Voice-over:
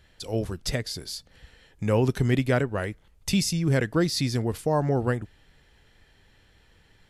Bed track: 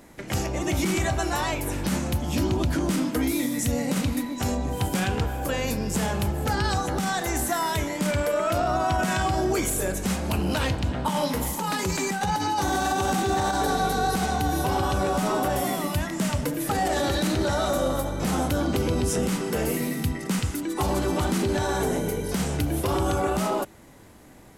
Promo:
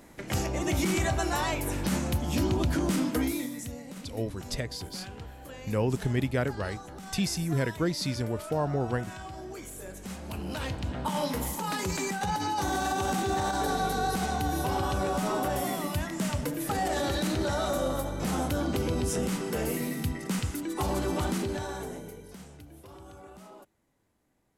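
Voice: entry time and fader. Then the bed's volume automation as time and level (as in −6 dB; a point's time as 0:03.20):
3.85 s, −5.0 dB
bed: 0:03.19 −2.5 dB
0:03.84 −17 dB
0:09.66 −17 dB
0:11.14 −4.5 dB
0:21.29 −4.5 dB
0:22.66 −24 dB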